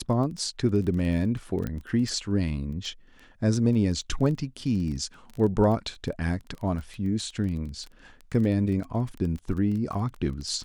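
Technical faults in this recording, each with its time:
surface crackle 16 per second −33 dBFS
0:01.67: click −19 dBFS

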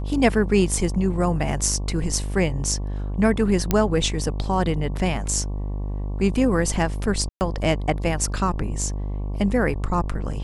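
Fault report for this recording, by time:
mains buzz 50 Hz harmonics 23 −27 dBFS
0:03.71: click −5 dBFS
0:07.29–0:07.41: drop-out 119 ms

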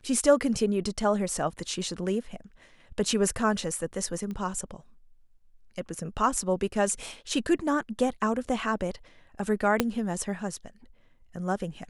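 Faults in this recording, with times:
0:04.31: click −25 dBFS
0:09.80: click −7 dBFS

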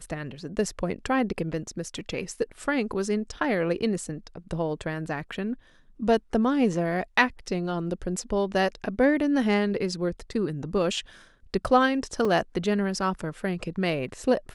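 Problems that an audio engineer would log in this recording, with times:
0:12.25: drop-out 3.2 ms

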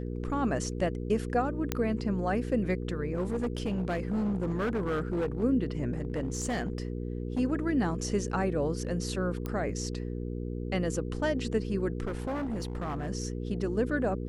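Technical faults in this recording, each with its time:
mains hum 60 Hz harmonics 8 −35 dBFS
0:01.72: click −13 dBFS
0:03.15–0:05.44: clipping −26 dBFS
0:05.93–0:07.40: clipping −26.5 dBFS
0:09.46: click −21 dBFS
0:12.07–0:13.10: clipping −29.5 dBFS

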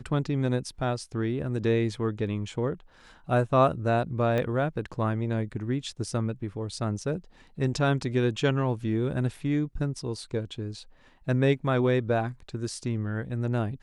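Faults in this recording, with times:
0:04.38: click −17 dBFS

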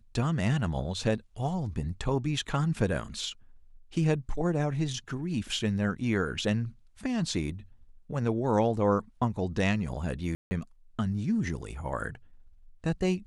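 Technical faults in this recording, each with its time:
0:10.35–0:10.51: drop-out 160 ms

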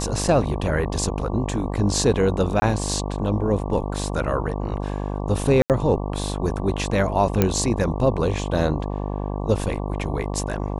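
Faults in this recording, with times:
mains buzz 50 Hz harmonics 23 −27 dBFS
0:02.60–0:02.62: drop-out 20 ms
0:05.62–0:05.70: drop-out 78 ms
0:07.42: click −4 dBFS

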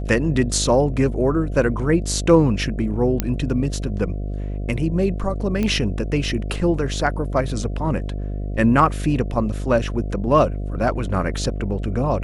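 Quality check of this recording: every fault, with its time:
mains buzz 50 Hz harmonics 14 −26 dBFS
0:03.20: click −5 dBFS
0:05.63: click −11 dBFS

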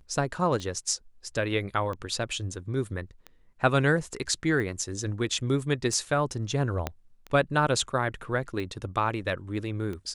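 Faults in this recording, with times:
scratch tick 45 rpm −24 dBFS
0:06.87: click −14 dBFS

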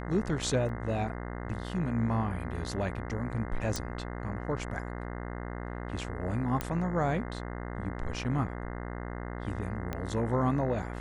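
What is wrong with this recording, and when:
mains buzz 60 Hz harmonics 35 −38 dBFS
0:00.69: drop-out 2.1 ms
0:03.76: click
0:06.61: click −16 dBFS
0:09.93: click −20 dBFS

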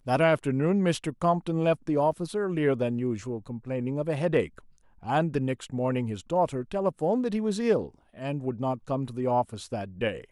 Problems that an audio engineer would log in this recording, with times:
0:02.12: drop-out 3.2 ms

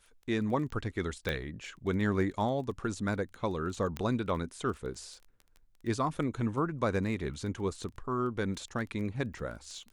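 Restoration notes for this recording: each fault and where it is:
surface crackle 12 per second −40 dBFS
0:01.29: click −18 dBFS
0:03.97: click −20 dBFS

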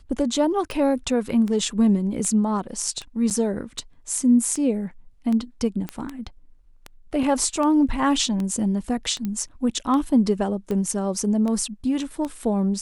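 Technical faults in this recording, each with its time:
scratch tick 78 rpm
0:03.30–0:03.31: drop-out 7.9 ms
0:05.89: click −15 dBFS
0:07.23: drop-out 2.1 ms
0:09.25: click −16 dBFS

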